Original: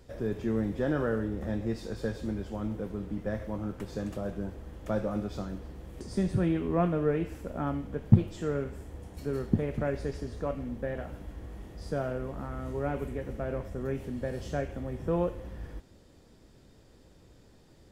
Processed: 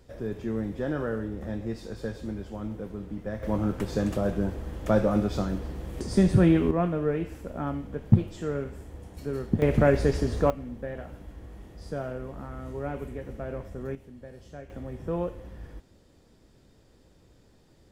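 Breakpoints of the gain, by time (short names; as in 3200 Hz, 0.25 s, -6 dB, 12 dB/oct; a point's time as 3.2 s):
-1 dB
from 3.43 s +8 dB
from 6.71 s +0.5 dB
from 9.62 s +10.5 dB
from 10.5 s -1.5 dB
from 13.95 s -11 dB
from 14.7 s -1.5 dB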